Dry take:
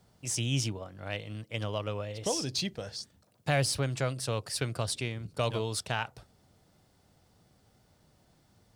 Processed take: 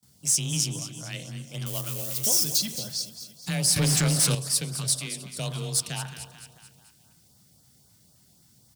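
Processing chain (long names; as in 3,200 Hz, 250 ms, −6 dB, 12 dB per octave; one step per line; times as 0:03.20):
0:01.66–0:02.58: spike at every zero crossing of −31 dBFS
bass and treble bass +12 dB, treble +11 dB
repeating echo 219 ms, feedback 51%, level −12.5 dB
frequency shifter +21 Hz
0:04.98–0:05.38: high-pass filter 170 Hz 24 dB per octave
spring reverb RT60 1.1 s, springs 30 ms, chirp 50 ms, DRR 11 dB
auto-filter notch saw up 3.8 Hz 350–2,900 Hz
in parallel at −6 dB: hard clipping −26.5 dBFS, distortion −6 dB
on the sum: noise gate with hold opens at −44 dBFS
spectral tilt +2 dB per octave
0:03.76–0:04.35: leveller curve on the samples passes 3
level −6.5 dB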